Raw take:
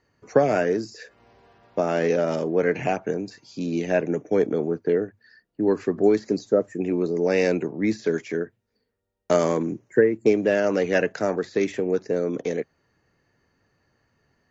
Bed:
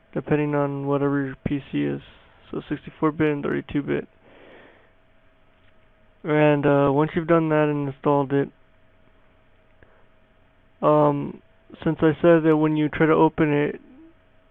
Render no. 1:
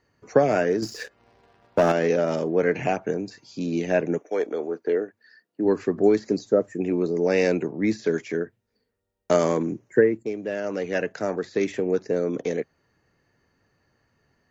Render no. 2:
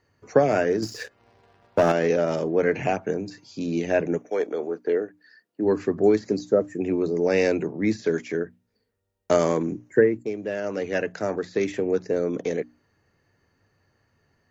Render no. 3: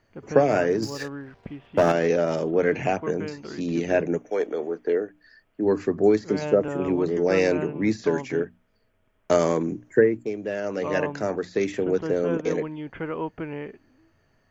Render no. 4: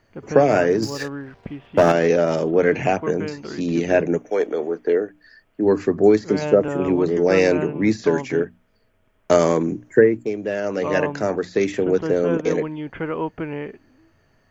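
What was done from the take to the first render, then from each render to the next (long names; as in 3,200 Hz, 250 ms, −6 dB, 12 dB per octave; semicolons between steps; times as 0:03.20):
0:00.82–0:01.92: leveller curve on the samples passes 2; 0:04.17–0:05.64: high-pass filter 590 Hz → 200 Hz; 0:10.23–0:11.85: fade in, from −12 dB
parametric band 95 Hz +6 dB 0.45 octaves; mains-hum notches 60/120/180/240/300 Hz
mix in bed −13 dB
level +4.5 dB; brickwall limiter −2 dBFS, peak gain reduction 2 dB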